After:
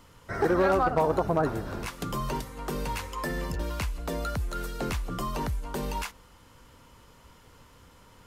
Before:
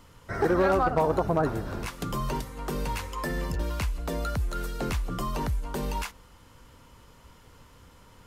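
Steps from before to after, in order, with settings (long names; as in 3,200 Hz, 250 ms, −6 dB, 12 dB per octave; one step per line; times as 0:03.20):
low-shelf EQ 150 Hz −3 dB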